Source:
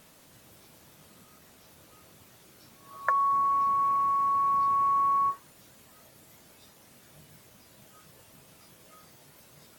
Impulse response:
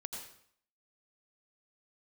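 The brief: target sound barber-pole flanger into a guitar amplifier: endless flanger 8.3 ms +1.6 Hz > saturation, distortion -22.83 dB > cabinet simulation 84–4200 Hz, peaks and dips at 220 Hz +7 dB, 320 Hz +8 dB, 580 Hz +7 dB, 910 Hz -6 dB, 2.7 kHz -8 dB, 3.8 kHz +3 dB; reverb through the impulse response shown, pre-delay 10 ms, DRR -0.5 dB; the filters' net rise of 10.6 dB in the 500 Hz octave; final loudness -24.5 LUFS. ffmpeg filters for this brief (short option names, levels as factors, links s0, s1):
-filter_complex "[0:a]equalizer=f=500:t=o:g=7.5,asplit=2[s0][s1];[1:a]atrim=start_sample=2205,adelay=10[s2];[s1][s2]afir=irnorm=-1:irlink=0,volume=1.26[s3];[s0][s3]amix=inputs=2:normalize=0,asplit=2[s4][s5];[s5]adelay=8.3,afreqshift=1.6[s6];[s4][s6]amix=inputs=2:normalize=1,asoftclip=threshold=0.15,highpass=84,equalizer=f=220:t=q:w=4:g=7,equalizer=f=320:t=q:w=4:g=8,equalizer=f=580:t=q:w=4:g=7,equalizer=f=910:t=q:w=4:g=-6,equalizer=f=2700:t=q:w=4:g=-8,equalizer=f=3800:t=q:w=4:g=3,lowpass=f=4200:w=0.5412,lowpass=f=4200:w=1.3066,volume=1.26"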